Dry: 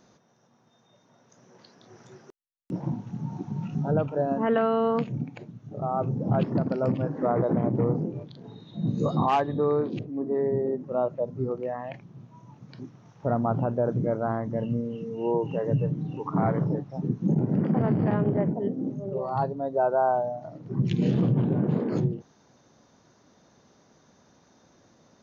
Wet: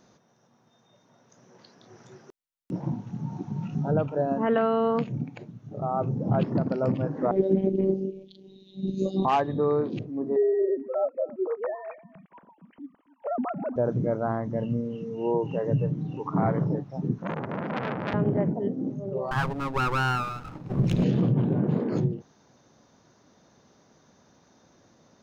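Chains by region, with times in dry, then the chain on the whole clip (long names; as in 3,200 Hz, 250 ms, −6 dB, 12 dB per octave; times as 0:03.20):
0:07.31–0:09.25: drawn EQ curve 160 Hz 0 dB, 360 Hz +11 dB, 1,300 Hz −21 dB, 2,900 Hz +12 dB, 4,900 Hz +7 dB + phases set to zero 192 Hz + expander for the loud parts, over −34 dBFS
0:10.36–0:13.76: three sine waves on the formant tracks + notch filter 740 Hz, Q 20 + single-tap delay 274 ms −19.5 dB
0:17.18–0:18.14: high-pass filter 170 Hz 6 dB per octave + parametric band 1,500 Hz +10.5 dB 0.78 octaves + saturating transformer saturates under 1,700 Hz
0:19.31–0:21.04: lower of the sound and its delayed copy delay 0.78 ms + leveller curve on the samples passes 1
whole clip: no processing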